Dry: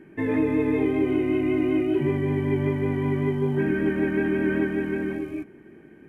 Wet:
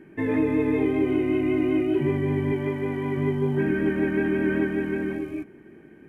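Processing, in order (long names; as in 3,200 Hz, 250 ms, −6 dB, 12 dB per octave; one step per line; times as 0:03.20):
0:02.52–0:03.17: low-shelf EQ 140 Hz −11.5 dB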